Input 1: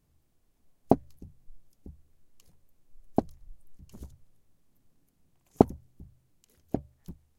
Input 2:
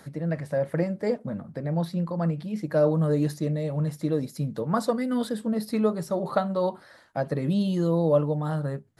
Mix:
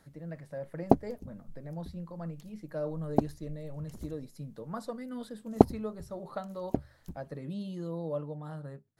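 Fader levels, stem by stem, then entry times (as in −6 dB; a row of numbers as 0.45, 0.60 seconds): 0.0, −13.5 decibels; 0.00, 0.00 seconds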